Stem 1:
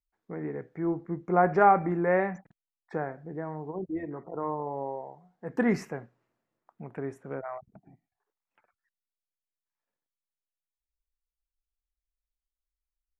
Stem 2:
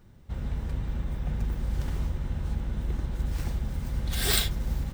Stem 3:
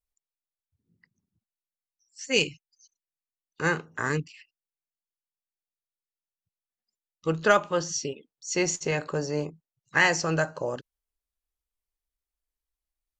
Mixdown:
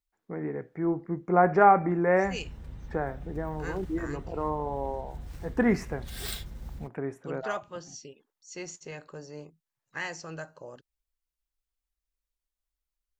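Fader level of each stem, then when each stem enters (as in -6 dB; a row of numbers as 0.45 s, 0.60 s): +1.5 dB, -11.5 dB, -14.0 dB; 0.00 s, 1.95 s, 0.00 s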